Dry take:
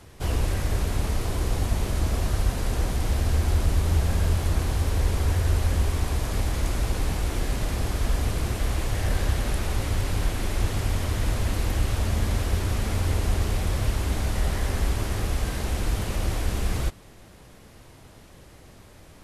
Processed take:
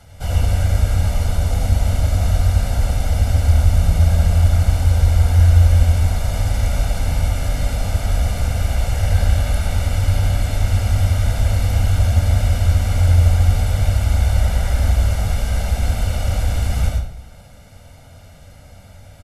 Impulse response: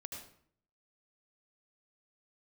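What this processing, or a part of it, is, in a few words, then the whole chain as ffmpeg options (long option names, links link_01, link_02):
microphone above a desk: -filter_complex "[0:a]aecho=1:1:1.4:0.78[link_01];[1:a]atrim=start_sample=2205[link_02];[link_01][link_02]afir=irnorm=-1:irlink=0,volume=5dB"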